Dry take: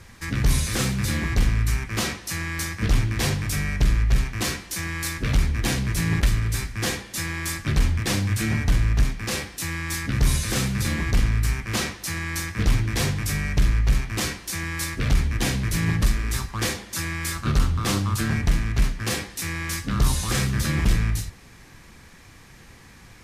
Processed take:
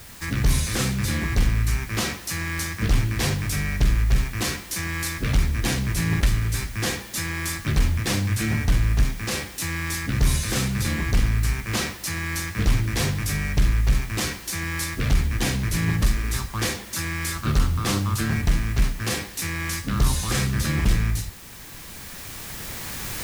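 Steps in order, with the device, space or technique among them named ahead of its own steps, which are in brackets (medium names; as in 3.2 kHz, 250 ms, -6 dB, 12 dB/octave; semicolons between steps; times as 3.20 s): cheap recorder with automatic gain (white noise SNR 23 dB; recorder AGC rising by 6.4 dB/s)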